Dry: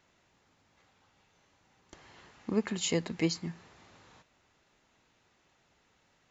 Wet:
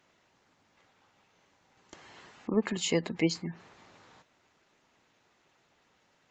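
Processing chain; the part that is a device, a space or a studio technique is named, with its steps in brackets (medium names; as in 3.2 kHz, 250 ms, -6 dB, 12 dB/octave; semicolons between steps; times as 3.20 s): noise-suppressed video call (high-pass 170 Hz 6 dB/octave; spectral gate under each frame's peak -30 dB strong; trim +3.5 dB; Opus 24 kbps 48 kHz)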